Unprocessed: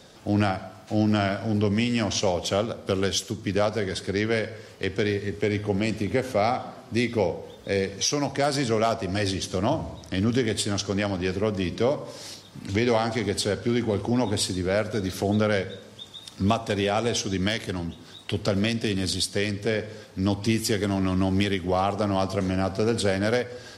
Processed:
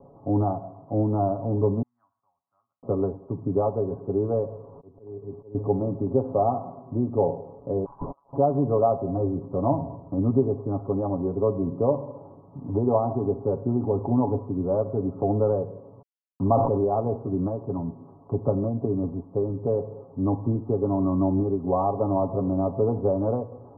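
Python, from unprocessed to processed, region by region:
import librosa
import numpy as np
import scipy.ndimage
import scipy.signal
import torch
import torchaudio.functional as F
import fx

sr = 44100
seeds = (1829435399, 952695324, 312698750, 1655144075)

y = fx.chain(x, sr, fx.ellip_bandpass(low_hz=1900.0, high_hz=5500.0, order=3, stop_db=60),
    fx.tilt_eq(slope=-3.5),
    fx.band_widen(depth_pct=100), at=(1.82, 2.83))
y = fx.chain(y, sr, fx.delta_mod(bps=64000, step_db=-39.0),
    fx.auto_swell(attack_ms=755.0), at=(4.47, 5.55))
y = fx.chain(y, sr, fx.freq_invert(carrier_hz=3300),
    fx.over_compress(threshold_db=-33.0, ratio=-0.5), at=(7.85, 8.33))
y = fx.chain(y, sr, fx.lowpass(hz=1400.0, slope=24),
    fx.quant_dither(seeds[0], bits=6, dither='none'),
    fx.sustainer(db_per_s=29.0), at=(16.02, 16.84))
y = scipy.signal.sosfilt(scipy.signal.butter(12, 1100.0, 'lowpass', fs=sr, output='sos'), y)
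y = y + 0.61 * np.pad(y, (int(7.2 * sr / 1000.0), 0))[:len(y)]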